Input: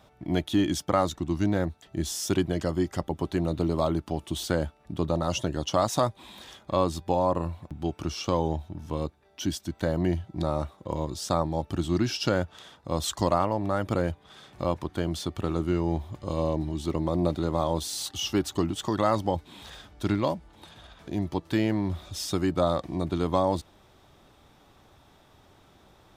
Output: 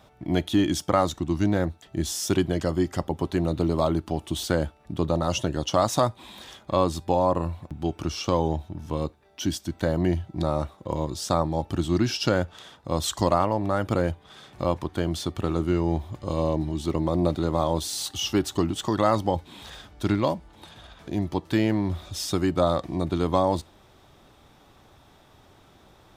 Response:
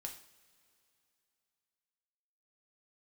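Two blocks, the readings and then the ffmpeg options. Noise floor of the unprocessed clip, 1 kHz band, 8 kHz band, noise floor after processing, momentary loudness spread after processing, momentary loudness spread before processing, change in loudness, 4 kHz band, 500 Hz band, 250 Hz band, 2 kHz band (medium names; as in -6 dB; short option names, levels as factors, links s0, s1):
-59 dBFS, +2.5 dB, +2.5 dB, -56 dBFS, 8 LU, 8 LU, +2.5 dB, +2.5 dB, +2.5 dB, +2.5 dB, +2.5 dB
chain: -filter_complex "[0:a]asplit=2[s0][s1];[1:a]atrim=start_sample=2205,atrim=end_sample=3969[s2];[s1][s2]afir=irnorm=-1:irlink=0,volume=0.211[s3];[s0][s3]amix=inputs=2:normalize=0,volume=1.19"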